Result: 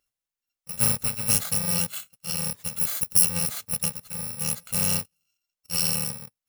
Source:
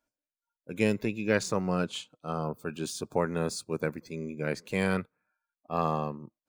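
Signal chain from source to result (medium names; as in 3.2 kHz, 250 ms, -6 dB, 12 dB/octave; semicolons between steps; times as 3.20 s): bit-reversed sample order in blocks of 128 samples; 2.76–3.29 s: treble shelf 8 kHz +7 dB; trim +3.5 dB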